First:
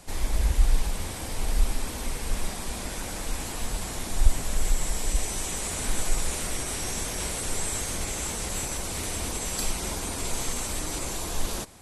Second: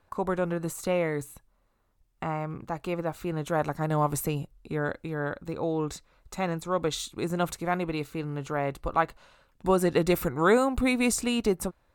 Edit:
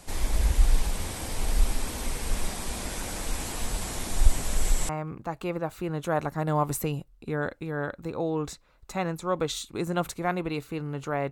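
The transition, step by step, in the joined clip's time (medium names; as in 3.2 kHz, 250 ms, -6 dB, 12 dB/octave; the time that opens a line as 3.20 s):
first
4.89 s: go over to second from 2.32 s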